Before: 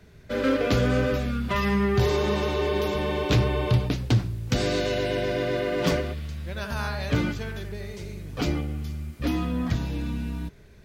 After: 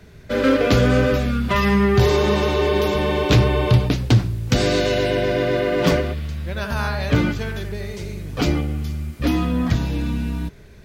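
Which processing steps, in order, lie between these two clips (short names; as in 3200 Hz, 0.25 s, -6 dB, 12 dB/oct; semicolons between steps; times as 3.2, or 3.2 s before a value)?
5.1–7.39 bell 7400 Hz -3 dB 2.1 oct; gain +6.5 dB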